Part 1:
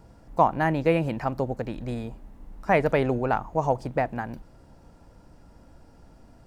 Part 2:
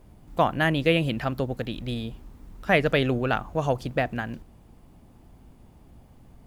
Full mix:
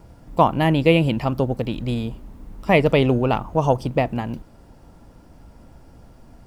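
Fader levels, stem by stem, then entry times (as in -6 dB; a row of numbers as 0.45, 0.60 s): +3.0, +0.5 dB; 0.00, 0.00 s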